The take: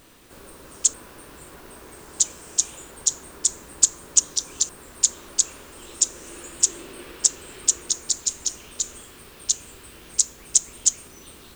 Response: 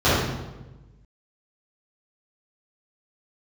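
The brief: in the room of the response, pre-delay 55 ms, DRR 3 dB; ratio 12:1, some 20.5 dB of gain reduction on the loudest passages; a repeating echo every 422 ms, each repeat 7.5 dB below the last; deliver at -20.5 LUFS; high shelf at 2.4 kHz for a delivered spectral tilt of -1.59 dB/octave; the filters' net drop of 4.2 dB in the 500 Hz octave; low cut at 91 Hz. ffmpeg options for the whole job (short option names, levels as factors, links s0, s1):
-filter_complex "[0:a]highpass=91,equalizer=f=500:t=o:g=-6,highshelf=f=2400:g=5.5,acompressor=threshold=0.0355:ratio=12,aecho=1:1:422|844|1266|1688|2110:0.422|0.177|0.0744|0.0312|0.0131,asplit=2[s0][s1];[1:a]atrim=start_sample=2205,adelay=55[s2];[s1][s2]afir=irnorm=-1:irlink=0,volume=0.0531[s3];[s0][s3]amix=inputs=2:normalize=0,volume=4.47"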